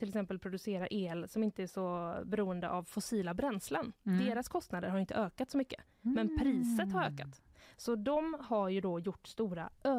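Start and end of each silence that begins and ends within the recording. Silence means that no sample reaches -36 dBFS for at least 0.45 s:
7.22–7.86

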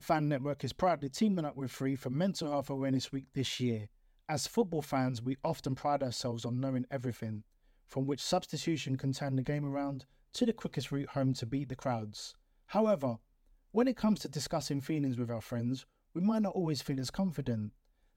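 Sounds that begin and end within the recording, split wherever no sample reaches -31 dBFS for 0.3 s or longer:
4.3–7.33
7.96–9.9
10.36–12.04
12.75–13.13
13.76–15.74
16.16–17.65

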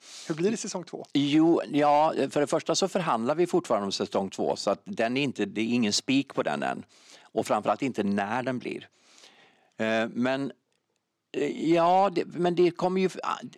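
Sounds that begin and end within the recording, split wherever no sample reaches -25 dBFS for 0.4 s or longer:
7.37–8.76
9.8–10.47

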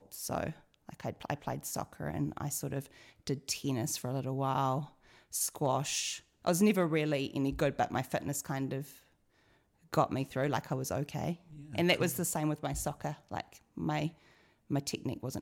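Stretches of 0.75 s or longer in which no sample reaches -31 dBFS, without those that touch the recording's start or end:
8.8–9.94

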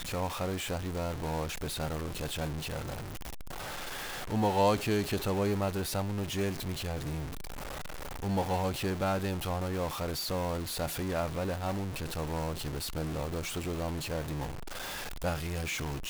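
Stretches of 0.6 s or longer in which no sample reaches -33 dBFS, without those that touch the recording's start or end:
3–4.3
7.25–8.23
14.5–15.24

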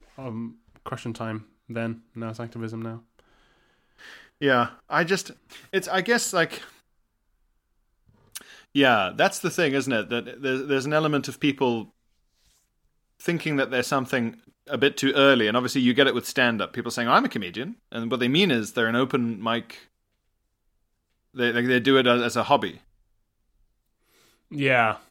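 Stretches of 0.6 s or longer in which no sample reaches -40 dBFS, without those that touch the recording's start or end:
3.19–4.01
6.7–8.35
11.84–13.2
19.82–21.35
22.77–24.51

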